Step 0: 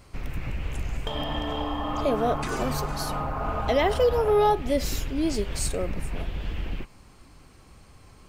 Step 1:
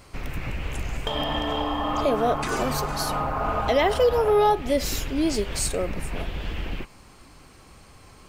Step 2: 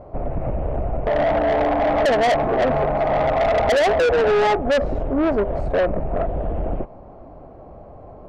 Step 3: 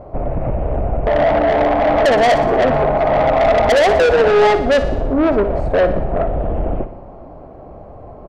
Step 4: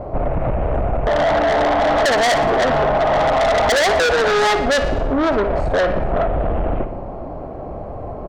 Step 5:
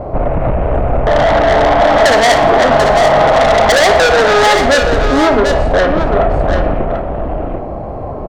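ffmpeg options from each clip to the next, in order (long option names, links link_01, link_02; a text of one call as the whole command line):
ffmpeg -i in.wav -filter_complex "[0:a]lowshelf=frequency=240:gain=-5.5,asplit=2[link_01][link_02];[link_02]alimiter=limit=-21dB:level=0:latency=1:release=354,volume=-2dB[link_03];[link_01][link_03]amix=inputs=2:normalize=0" out.wav
ffmpeg -i in.wav -af "lowpass=frequency=650:width_type=q:width=4.9,asoftclip=type=tanh:threshold=-22dB,volume=7dB" out.wav
ffmpeg -i in.wav -af "aecho=1:1:60|120|180|240|300|360|420:0.251|0.148|0.0874|0.0516|0.0304|0.018|0.0106,volume=4.5dB" out.wav
ffmpeg -i in.wav -filter_complex "[0:a]acrossover=split=870[link_01][link_02];[link_01]acompressor=threshold=-22dB:ratio=6[link_03];[link_03][link_02]amix=inputs=2:normalize=0,asoftclip=type=tanh:threshold=-19dB,volume=7dB" out.wav
ffmpeg -i in.wav -filter_complex "[0:a]asplit=2[link_01][link_02];[link_02]adelay=32,volume=-12dB[link_03];[link_01][link_03]amix=inputs=2:normalize=0,aecho=1:1:740:0.473,volume=5.5dB" out.wav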